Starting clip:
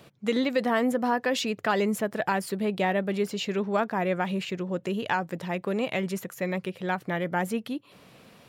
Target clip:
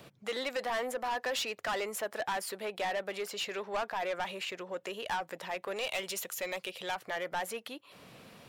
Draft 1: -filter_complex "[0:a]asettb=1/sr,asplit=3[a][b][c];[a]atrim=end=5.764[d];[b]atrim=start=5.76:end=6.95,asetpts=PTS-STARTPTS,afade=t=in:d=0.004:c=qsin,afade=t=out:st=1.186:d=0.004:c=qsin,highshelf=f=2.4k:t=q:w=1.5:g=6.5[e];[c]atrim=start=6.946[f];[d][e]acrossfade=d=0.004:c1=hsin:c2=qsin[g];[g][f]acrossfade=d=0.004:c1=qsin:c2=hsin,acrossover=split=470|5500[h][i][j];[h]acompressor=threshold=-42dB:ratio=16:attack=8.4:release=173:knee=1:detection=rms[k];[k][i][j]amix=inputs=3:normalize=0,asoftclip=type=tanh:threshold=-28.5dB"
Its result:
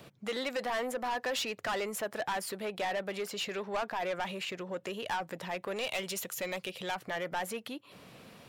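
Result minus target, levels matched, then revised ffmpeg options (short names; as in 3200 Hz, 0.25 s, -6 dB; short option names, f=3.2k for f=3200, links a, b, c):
compressor: peak gain reduction -10.5 dB
-filter_complex "[0:a]asettb=1/sr,asplit=3[a][b][c];[a]atrim=end=5.764[d];[b]atrim=start=5.76:end=6.95,asetpts=PTS-STARTPTS,afade=t=in:d=0.004:c=qsin,afade=t=out:st=1.186:d=0.004:c=qsin,highshelf=f=2.4k:t=q:w=1.5:g=6.5[e];[c]atrim=start=6.946[f];[d][e]acrossfade=d=0.004:c1=hsin:c2=qsin[g];[g][f]acrossfade=d=0.004:c1=qsin:c2=hsin,acrossover=split=470|5500[h][i][j];[h]acompressor=threshold=-53dB:ratio=16:attack=8.4:release=173:knee=1:detection=rms[k];[k][i][j]amix=inputs=3:normalize=0,asoftclip=type=tanh:threshold=-28.5dB"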